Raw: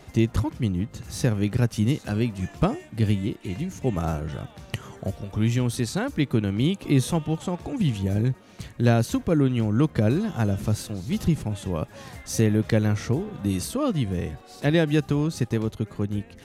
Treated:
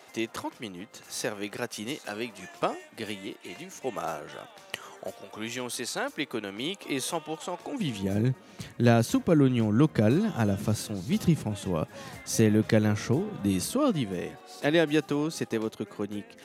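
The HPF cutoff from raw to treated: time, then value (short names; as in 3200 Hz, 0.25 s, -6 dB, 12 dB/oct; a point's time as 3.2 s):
7.55 s 500 Hz
8.23 s 130 Hz
13.75 s 130 Hz
14.23 s 290 Hz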